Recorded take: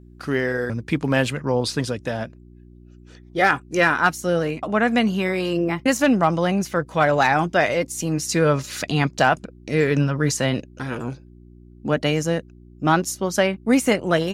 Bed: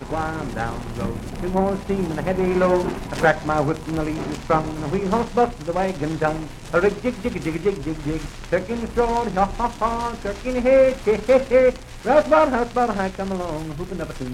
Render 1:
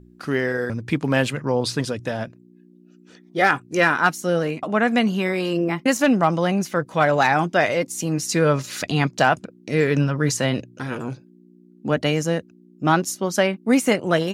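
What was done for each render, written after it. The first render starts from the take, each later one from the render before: de-hum 60 Hz, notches 2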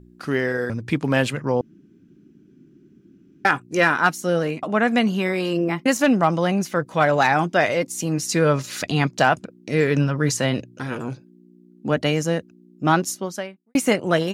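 1.61–3.45 room tone; 13.11–13.75 fade out quadratic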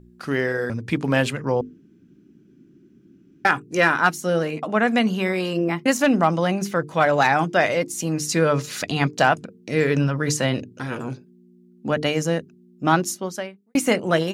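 notches 50/100/150/200/250/300/350/400/450 Hz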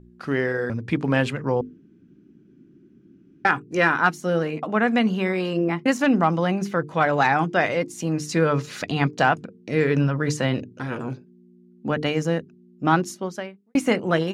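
LPF 2800 Hz 6 dB/oct; dynamic EQ 610 Hz, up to -5 dB, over -33 dBFS, Q 4.7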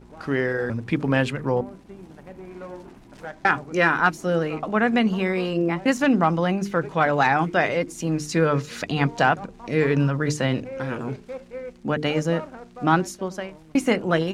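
add bed -20 dB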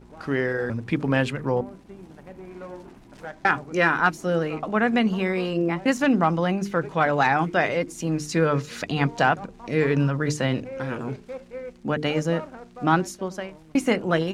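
gain -1 dB

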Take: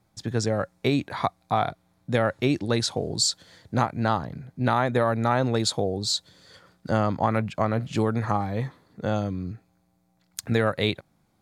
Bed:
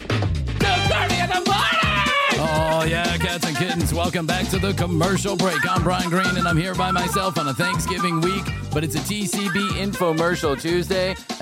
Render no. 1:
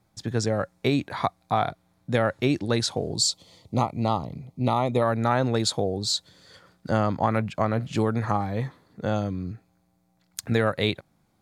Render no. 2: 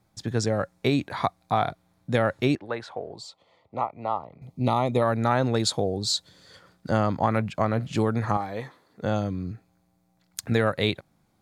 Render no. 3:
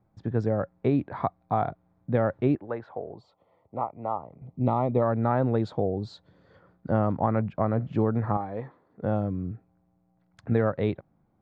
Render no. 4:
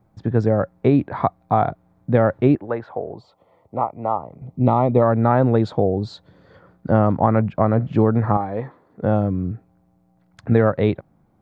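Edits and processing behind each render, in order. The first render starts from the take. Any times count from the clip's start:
3.13–5.02 Butterworth band-stop 1600 Hz, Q 1.8
2.55–4.42 three-band isolator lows -16 dB, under 490 Hz, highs -24 dB, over 2300 Hz; 8.37–9.02 tone controls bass -12 dB, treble 0 dB
Bessel low-pass 940 Hz, order 2
gain +8 dB

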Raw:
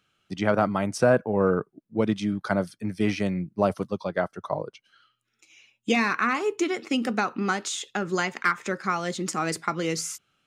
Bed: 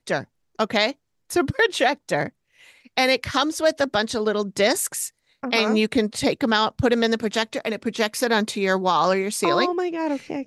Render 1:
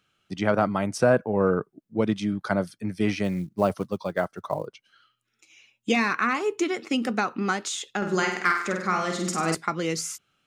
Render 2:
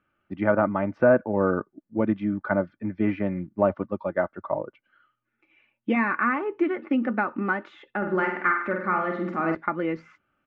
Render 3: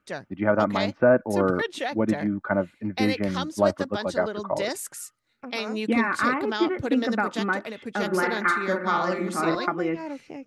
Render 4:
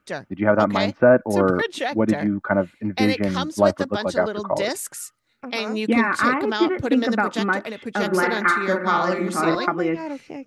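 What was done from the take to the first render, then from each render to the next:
3.24–4.67 short-mantissa float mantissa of 4-bit; 7.97–9.55 flutter echo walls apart 8.4 m, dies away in 0.65 s
LPF 2000 Hz 24 dB/oct; comb 3.4 ms, depth 46%
add bed -10 dB
gain +4 dB

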